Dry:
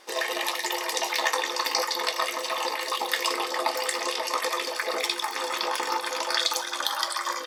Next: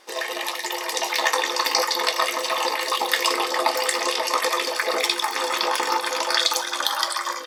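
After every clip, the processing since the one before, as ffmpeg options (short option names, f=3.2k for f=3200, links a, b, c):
-af "dynaudnorm=f=710:g=3:m=6dB"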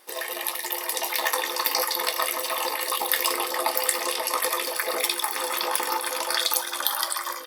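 -af "aexciter=amount=6.5:drive=2.6:freq=9.2k,volume=-4.5dB"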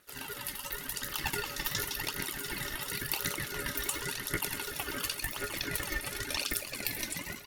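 -af "aphaser=in_gain=1:out_gain=1:delay=3.5:decay=0.61:speed=0.92:type=triangular,aeval=exprs='val(0)*sin(2*PI*920*n/s)':c=same,volume=-8.5dB"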